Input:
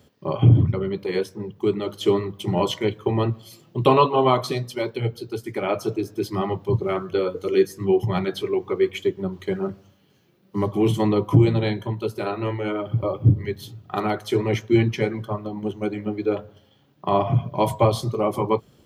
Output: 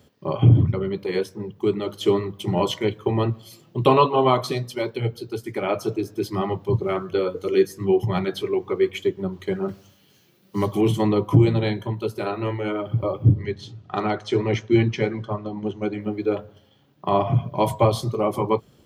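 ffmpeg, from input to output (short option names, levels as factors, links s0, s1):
-filter_complex "[0:a]asettb=1/sr,asplit=3[s0][s1][s2];[s0]atrim=end=9.684[s3];[s1]atrim=start=9.68:end=10.81,asetpts=PTS-STARTPTS,afade=t=in:d=0.004:c=qsin,afade=t=out:st=1.126:d=0.004:c=qsin,highshelf=f=2500:g=11[s4];[s2]atrim=start=10.806[s5];[s3][s4]acrossfade=d=0.004:c1=hsin:c2=qsin[s6];[s6][s5]acrossfade=d=0.004:c1=qsin:c2=hsin,asettb=1/sr,asplit=3[s7][s8][s9];[s7]atrim=end=13.274[s10];[s8]atrim=start=13.27:end=16.01,asetpts=PTS-STARTPTS,afade=t=in:d=0.004:c=qsin,afade=t=out:st=2.736:d=0.004:c=qsin,lowpass=f=6900:w=0.5412,lowpass=f=6900:w=1.3066[s11];[s9]atrim=start=16.006[s12];[s10][s11]acrossfade=d=0.004:c1=hsin:c2=qsin[s13];[s13][s12]acrossfade=d=0.004:c1=qsin:c2=hsin"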